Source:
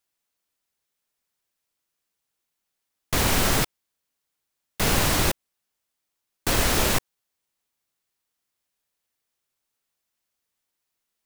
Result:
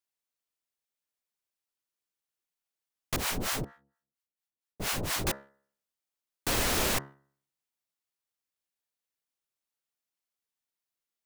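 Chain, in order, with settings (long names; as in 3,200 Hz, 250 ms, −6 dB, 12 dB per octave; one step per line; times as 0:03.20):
low-shelf EQ 120 Hz −4.5 dB
hum removal 69.13 Hz, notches 29
leveller curve on the samples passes 1
0:03.16–0:05.27: two-band tremolo in antiphase 4.3 Hz, depth 100%, crossover 650 Hz
level −8 dB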